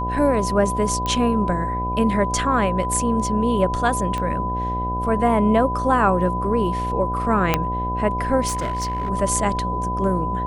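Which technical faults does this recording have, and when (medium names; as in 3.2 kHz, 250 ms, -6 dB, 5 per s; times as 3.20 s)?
buzz 60 Hz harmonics 13 -27 dBFS
whine 1 kHz -24 dBFS
1.06 s: pop -11 dBFS
4.18 s: pop -14 dBFS
7.54 s: pop -3 dBFS
8.47–9.10 s: clipped -20 dBFS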